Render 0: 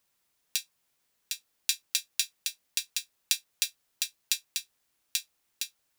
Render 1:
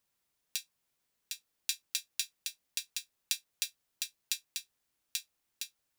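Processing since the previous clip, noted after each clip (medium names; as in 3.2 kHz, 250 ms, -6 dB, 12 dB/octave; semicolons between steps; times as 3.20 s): bass shelf 360 Hz +3.5 dB; trim -6 dB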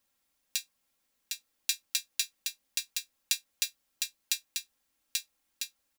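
comb 3.7 ms, depth 55%; trim +2.5 dB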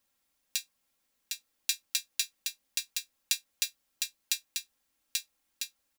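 no audible change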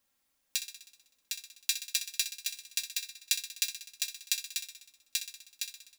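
thinning echo 63 ms, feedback 65%, high-pass 200 Hz, level -11 dB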